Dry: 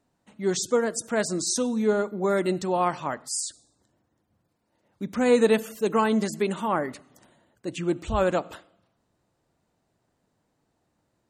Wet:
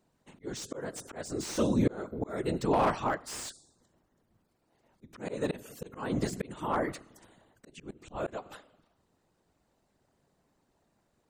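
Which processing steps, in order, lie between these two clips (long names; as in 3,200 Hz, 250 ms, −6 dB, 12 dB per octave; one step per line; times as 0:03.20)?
random phases in short frames
volume swells 504 ms
slew-rate limiting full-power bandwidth 68 Hz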